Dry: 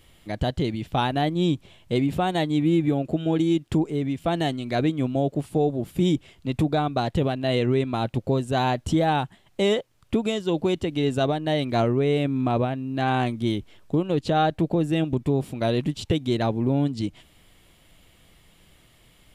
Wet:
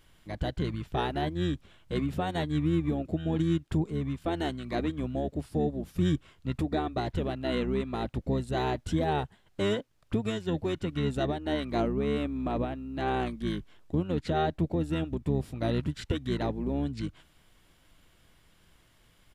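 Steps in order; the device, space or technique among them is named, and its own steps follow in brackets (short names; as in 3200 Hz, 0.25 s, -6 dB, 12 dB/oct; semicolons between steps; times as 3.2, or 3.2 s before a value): octave pedal (harmoniser -12 st -3 dB); gain -8 dB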